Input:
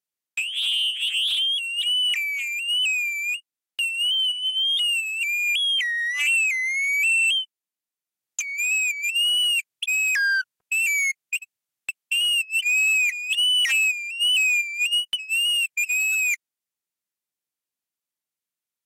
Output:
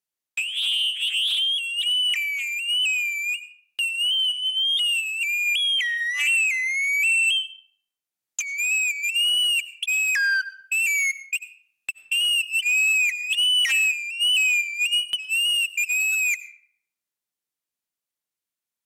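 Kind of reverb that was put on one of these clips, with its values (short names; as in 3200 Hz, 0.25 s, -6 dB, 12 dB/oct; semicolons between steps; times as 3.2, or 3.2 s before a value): digital reverb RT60 0.68 s, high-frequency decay 0.65×, pre-delay 55 ms, DRR 16 dB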